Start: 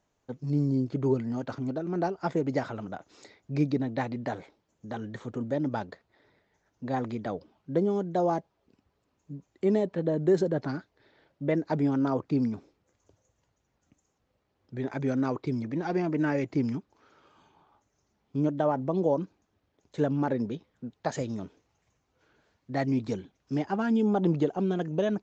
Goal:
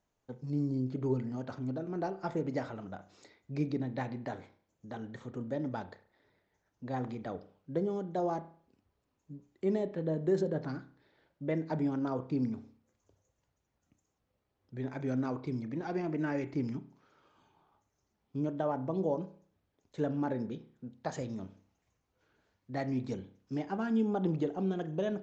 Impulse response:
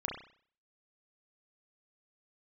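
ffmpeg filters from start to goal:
-filter_complex "[0:a]asplit=2[s0][s1];[1:a]atrim=start_sample=2205,lowshelf=f=120:g=10.5[s2];[s1][s2]afir=irnorm=-1:irlink=0,volume=0.282[s3];[s0][s3]amix=inputs=2:normalize=0,volume=0.376"

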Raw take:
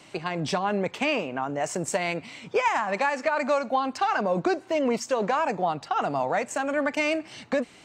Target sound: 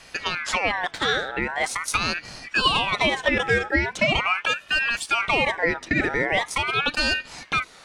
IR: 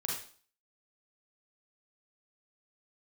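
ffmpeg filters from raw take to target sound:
-filter_complex "[0:a]acrossover=split=430|3000[s0][s1][s2];[s0]acompressor=threshold=0.0158:ratio=6[s3];[s3][s1][s2]amix=inputs=3:normalize=0,aeval=exprs='val(0)*sin(2*PI*1600*n/s+1600*0.35/0.42*sin(2*PI*0.42*n/s))':c=same,volume=2.11"

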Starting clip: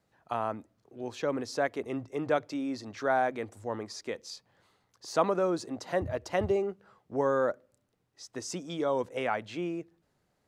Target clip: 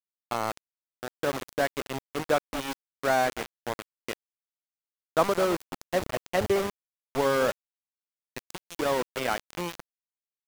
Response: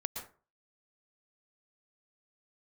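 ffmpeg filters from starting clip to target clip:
-af "aecho=1:1:219:0.211,aeval=exprs='val(0)*gte(abs(val(0)),0.0355)':c=same,volume=1.41"

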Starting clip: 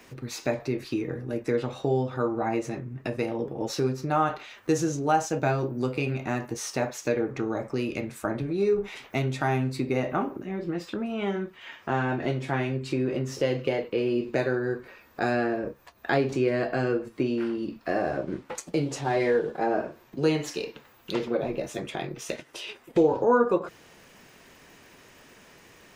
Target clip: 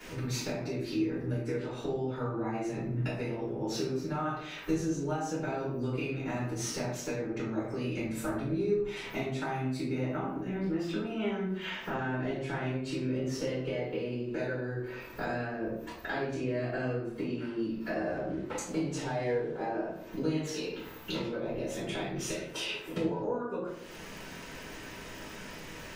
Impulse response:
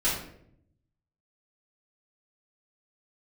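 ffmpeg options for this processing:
-filter_complex "[0:a]acompressor=threshold=0.01:ratio=6[s0];[1:a]atrim=start_sample=2205[s1];[s0][s1]afir=irnorm=-1:irlink=0,volume=0.75"

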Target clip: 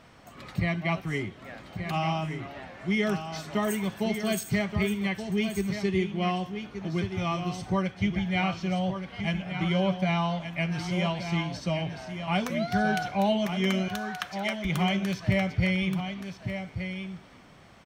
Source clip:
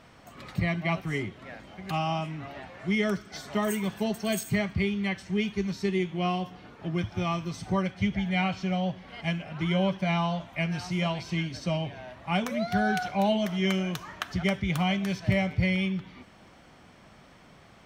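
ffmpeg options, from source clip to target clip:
-filter_complex "[0:a]asettb=1/sr,asplit=3[s0][s1][s2];[s0]atrim=end=13.884[s3];[s1]atrim=start=13.88:end=14.65,asetpts=PTS-STARTPTS,afade=t=in:d=0.004:c=qsin,afade=t=out:st=0.766:d=0.004:c=qsin,highpass=950[s4];[s2]atrim=start=14.646[s5];[s3][s4]acrossfade=d=0.004:c1=hsin:c2=qsin[s6];[s6][s5]acrossfade=d=0.004:c1=qsin:c2=hsin,aecho=1:1:1176:0.376"

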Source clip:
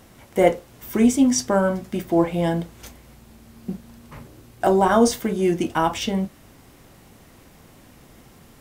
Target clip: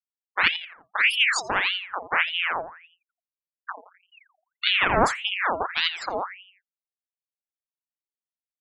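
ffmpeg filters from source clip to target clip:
-filter_complex "[0:a]acrossover=split=2700[s0][s1];[s0]aeval=exprs='max(val(0),0)':c=same[s2];[s2][s1]amix=inputs=2:normalize=0,highshelf=f=9600:g=-4,afftfilt=real='re*gte(hypot(re,im),0.0891)':imag='im*gte(hypot(re,im),0.0891)':win_size=1024:overlap=0.75,asplit=2[s3][s4];[s4]adelay=85,lowpass=f=1400:p=1,volume=0.237,asplit=2[s5][s6];[s6]adelay=85,lowpass=f=1400:p=1,volume=0.44,asplit=2[s7][s8];[s8]adelay=85,lowpass=f=1400:p=1,volume=0.44,asplit=2[s9][s10];[s10]adelay=85,lowpass=f=1400:p=1,volume=0.44[s11];[s3][s5][s7][s9][s11]amix=inputs=5:normalize=0,aeval=exprs='val(0)*sin(2*PI*1800*n/s+1800*0.65/1.7*sin(2*PI*1.7*n/s))':c=same"

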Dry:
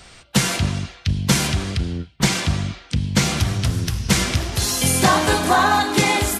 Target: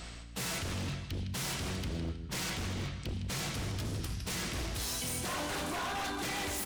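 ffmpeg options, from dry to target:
-filter_complex "[0:a]bandreject=f=73.3:t=h:w=4,bandreject=f=146.6:t=h:w=4,bandreject=f=219.9:t=h:w=4,bandreject=f=293.2:t=h:w=4,bandreject=f=366.5:t=h:w=4,bandreject=f=439.8:t=h:w=4,bandreject=f=513.1:t=h:w=4,bandreject=f=586.4:t=h:w=4,bandreject=f=659.7:t=h:w=4,bandreject=f=733:t=h:w=4,bandreject=f=806.3:t=h:w=4,bandreject=f=879.6:t=h:w=4,bandreject=f=952.9:t=h:w=4,bandreject=f=1026.2:t=h:w=4,bandreject=f=1099.5:t=h:w=4,bandreject=f=1172.8:t=h:w=4,bandreject=f=1246.1:t=h:w=4,bandreject=f=1319.4:t=h:w=4,bandreject=f=1392.7:t=h:w=4,bandreject=f=1466:t=h:w=4,bandreject=f=1539.3:t=h:w=4,bandreject=f=1612.6:t=h:w=4,bandreject=f=1685.9:t=h:w=4,bandreject=f=1759.2:t=h:w=4,bandreject=f=1832.5:t=h:w=4,bandreject=f=1905.8:t=h:w=4,bandreject=f=1979.1:t=h:w=4,bandreject=f=2052.4:t=h:w=4,bandreject=f=2125.7:t=h:w=4,bandreject=f=2199:t=h:w=4,bandreject=f=2272.3:t=h:w=4,bandreject=f=2345.6:t=h:w=4,bandreject=f=2418.9:t=h:w=4,areverse,acompressor=threshold=0.0355:ratio=6,areverse,aeval=exprs='val(0)+0.00501*(sin(2*PI*60*n/s)+sin(2*PI*2*60*n/s)/2+sin(2*PI*3*60*n/s)/3+sin(2*PI*4*60*n/s)/4+sin(2*PI*5*60*n/s)/5)':c=same,asetrate=42336,aresample=44100,asplit=2[s0][s1];[s1]aecho=0:1:159|318|477:0.299|0.0896|0.0269[s2];[s0][s2]amix=inputs=2:normalize=0,aeval=exprs='0.0355*(abs(mod(val(0)/0.0355+3,4)-2)-1)':c=same,volume=0.794"

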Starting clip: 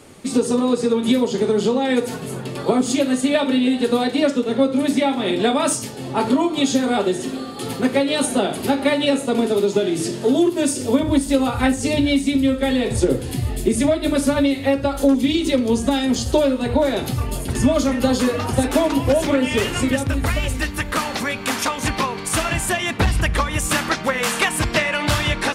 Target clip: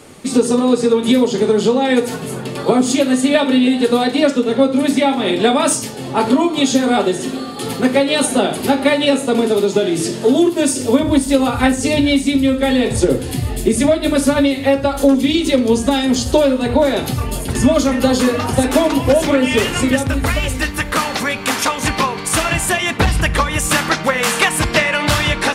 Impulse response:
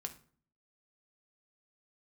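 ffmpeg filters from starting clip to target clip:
-filter_complex "[0:a]asplit=2[s0][s1];[1:a]atrim=start_sample=2205,lowshelf=f=140:g=-11[s2];[s1][s2]afir=irnorm=-1:irlink=0,volume=0.794[s3];[s0][s3]amix=inputs=2:normalize=0,volume=1.12"

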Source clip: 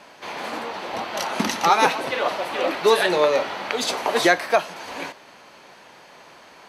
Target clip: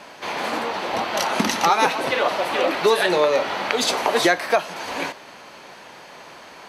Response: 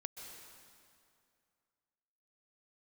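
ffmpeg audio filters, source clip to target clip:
-af "acompressor=threshold=0.0708:ratio=2,volume=1.78"

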